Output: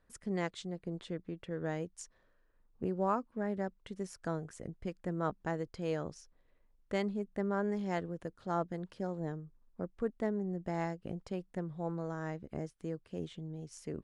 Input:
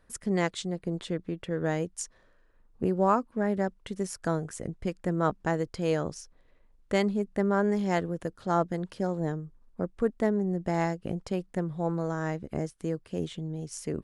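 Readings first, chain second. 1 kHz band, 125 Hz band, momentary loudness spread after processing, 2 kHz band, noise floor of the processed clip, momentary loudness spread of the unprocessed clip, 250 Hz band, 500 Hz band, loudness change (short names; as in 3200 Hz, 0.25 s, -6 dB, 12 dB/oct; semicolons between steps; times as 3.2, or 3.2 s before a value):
-8.0 dB, -8.0 dB, 9 LU, -8.5 dB, -70 dBFS, 9 LU, -8.0 dB, -8.0 dB, -8.0 dB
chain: high shelf 9200 Hz -11 dB; gain -8 dB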